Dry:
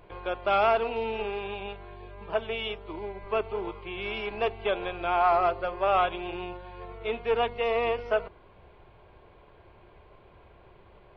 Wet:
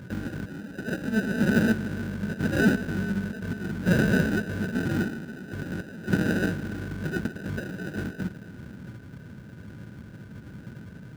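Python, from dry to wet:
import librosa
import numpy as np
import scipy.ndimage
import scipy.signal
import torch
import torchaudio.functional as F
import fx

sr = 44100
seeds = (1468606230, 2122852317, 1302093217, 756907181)

p1 = fx.over_compress(x, sr, threshold_db=-36.0, ratio=-1.0)
p2 = fx.graphic_eq(p1, sr, hz=(125, 250, 500, 1000, 2000, 4000), db=(11, -10, -12, -12, 7, 11))
p3 = p2 + fx.echo_thinned(p2, sr, ms=147, feedback_pct=76, hz=420.0, wet_db=-14.5, dry=0)
p4 = fx.sample_hold(p3, sr, seeds[0], rate_hz=1100.0, jitter_pct=0)
p5 = scipy.signal.sosfilt(scipy.signal.butter(2, 62.0, 'highpass', fs=sr, output='sos'), p4)
p6 = fx.peak_eq(p5, sr, hz=3000.0, db=2.5, octaves=2.2)
p7 = fx.notch(p6, sr, hz=720.0, q=12.0)
p8 = fx.small_body(p7, sr, hz=(200.0, 1500.0), ring_ms=30, db=18)
y = p8 * librosa.db_to_amplitude(-2.0)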